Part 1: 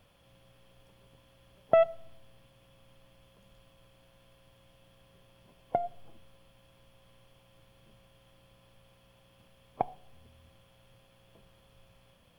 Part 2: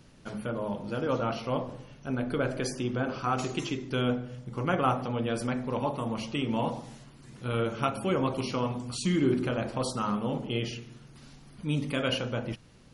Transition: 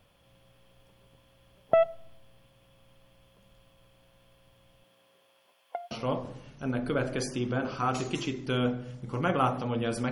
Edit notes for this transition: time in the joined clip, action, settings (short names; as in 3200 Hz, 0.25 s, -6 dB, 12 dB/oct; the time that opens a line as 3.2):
part 1
4.83–5.91 HPF 190 Hz -> 1300 Hz
5.91 switch to part 2 from 1.35 s